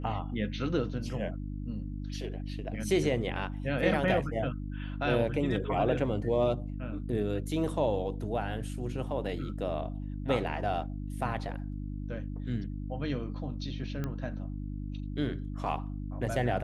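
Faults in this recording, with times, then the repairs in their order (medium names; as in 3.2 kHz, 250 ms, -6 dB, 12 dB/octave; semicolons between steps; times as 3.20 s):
hum 50 Hz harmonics 6 -37 dBFS
14.04 s: pop -22 dBFS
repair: de-click; de-hum 50 Hz, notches 6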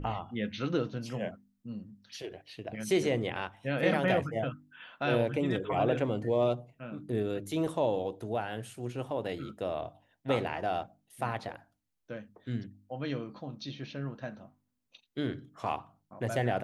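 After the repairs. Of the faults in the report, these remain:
nothing left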